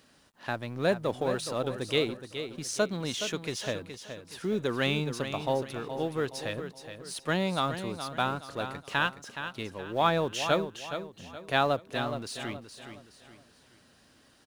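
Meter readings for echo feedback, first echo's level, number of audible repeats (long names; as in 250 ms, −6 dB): 36%, −9.5 dB, 3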